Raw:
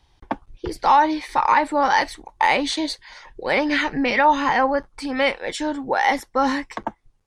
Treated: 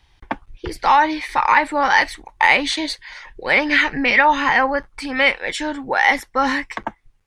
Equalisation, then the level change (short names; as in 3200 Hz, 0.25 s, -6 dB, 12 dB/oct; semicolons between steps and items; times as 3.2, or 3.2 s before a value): low shelf 130 Hz +6 dB; bell 2100 Hz +9.5 dB 1.6 oct; high shelf 7800 Hz +6 dB; -2.0 dB